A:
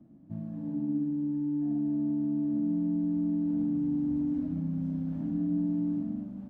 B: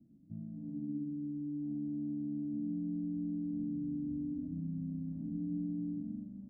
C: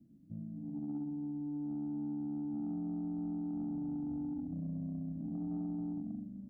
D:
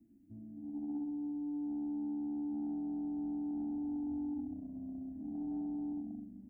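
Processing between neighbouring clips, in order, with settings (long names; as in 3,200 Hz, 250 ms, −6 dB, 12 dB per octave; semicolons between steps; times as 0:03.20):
drawn EQ curve 220 Hz 0 dB, 400 Hz −5 dB, 990 Hz −19 dB; level −6.5 dB
soft clipping −32.5 dBFS, distortion −20 dB; level +1 dB
phaser with its sweep stopped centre 800 Hz, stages 8; level +1.5 dB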